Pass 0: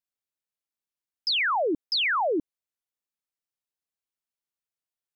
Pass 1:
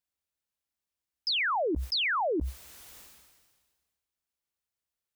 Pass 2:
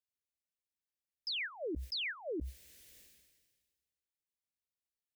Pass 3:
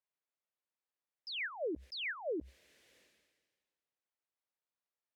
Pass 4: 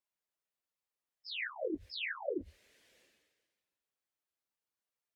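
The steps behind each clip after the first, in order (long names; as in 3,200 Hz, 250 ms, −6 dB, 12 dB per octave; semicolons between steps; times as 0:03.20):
parametric band 65 Hz +14 dB 0.6 octaves; brickwall limiter −27 dBFS, peak gain reduction 6 dB; level that may fall only so fast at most 37 dB per second; level +2 dB
flat-topped bell 1,000 Hz −15 dB 1.2 octaves; level −9 dB
resonant band-pass 840 Hz, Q 0.63; level +4.5 dB
random phases in long frames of 50 ms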